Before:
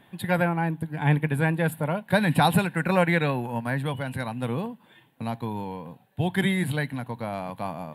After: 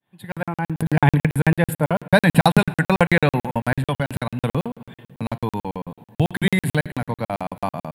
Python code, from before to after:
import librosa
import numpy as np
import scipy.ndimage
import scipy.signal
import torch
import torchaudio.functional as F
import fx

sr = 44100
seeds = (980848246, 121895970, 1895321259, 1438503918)

y = fx.fade_in_head(x, sr, length_s=1.16)
y = fx.room_shoebox(y, sr, seeds[0], volume_m3=3600.0, walls='mixed', distance_m=0.37)
y = fx.buffer_crackle(y, sr, first_s=0.32, period_s=0.11, block=2048, kind='zero')
y = fx.pre_swell(y, sr, db_per_s=36.0, at=(0.77, 1.25), fade=0.02)
y = y * 10.0 ** (7.0 / 20.0)